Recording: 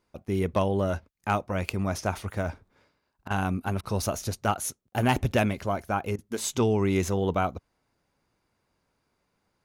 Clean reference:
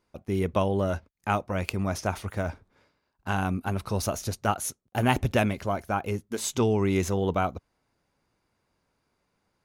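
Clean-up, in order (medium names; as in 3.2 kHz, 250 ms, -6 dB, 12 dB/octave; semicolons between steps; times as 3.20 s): clip repair -14 dBFS; interpolate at 3.28/3.81/6.16 s, 23 ms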